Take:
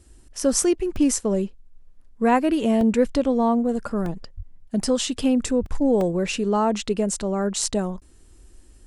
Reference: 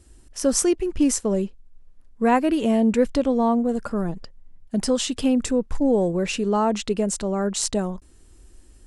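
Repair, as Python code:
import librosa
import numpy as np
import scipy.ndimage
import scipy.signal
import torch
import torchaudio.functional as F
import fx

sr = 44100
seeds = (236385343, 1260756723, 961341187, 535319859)

y = fx.highpass(x, sr, hz=140.0, slope=24, at=(4.36, 4.48), fade=0.02)
y = fx.highpass(y, sr, hz=140.0, slope=24, at=(5.6, 5.72), fade=0.02)
y = fx.fix_interpolate(y, sr, at_s=(0.64, 0.96, 2.81, 4.06, 4.83, 5.66, 6.01), length_ms=2.1)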